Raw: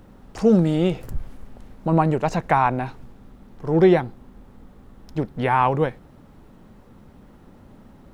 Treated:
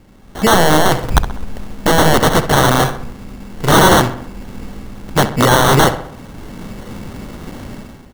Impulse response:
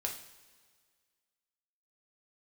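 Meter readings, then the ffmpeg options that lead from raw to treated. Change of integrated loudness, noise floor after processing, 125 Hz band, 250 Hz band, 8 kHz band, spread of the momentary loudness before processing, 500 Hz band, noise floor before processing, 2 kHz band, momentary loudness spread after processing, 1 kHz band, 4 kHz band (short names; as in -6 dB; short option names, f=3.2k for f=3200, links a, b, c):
+8.0 dB, -40 dBFS, +8.0 dB, +5.0 dB, n/a, 16 LU, +6.5 dB, -49 dBFS, +14.5 dB, 22 LU, +9.0 dB, +23.0 dB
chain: -filter_complex "[0:a]highshelf=f=3.9k:g=9,alimiter=limit=-13.5dB:level=0:latency=1:release=11,dynaudnorm=f=130:g=7:m=17dB,acrusher=samples=18:mix=1:aa=0.000001,aeval=exprs='(mod(1.88*val(0)+1,2)-1)/1.88':c=same,asplit=2[a][b];[b]adelay=65,lowpass=f=3.2k:p=1,volume=-11dB,asplit=2[c][d];[d]adelay=65,lowpass=f=3.2k:p=1,volume=0.52,asplit=2[e][f];[f]adelay=65,lowpass=f=3.2k:p=1,volume=0.52,asplit=2[g][h];[h]adelay=65,lowpass=f=3.2k:p=1,volume=0.52,asplit=2[i][j];[j]adelay=65,lowpass=f=3.2k:p=1,volume=0.52,asplit=2[k][l];[l]adelay=65,lowpass=f=3.2k:p=1,volume=0.52[m];[a][c][e][g][i][k][m]amix=inputs=7:normalize=0,volume=1dB"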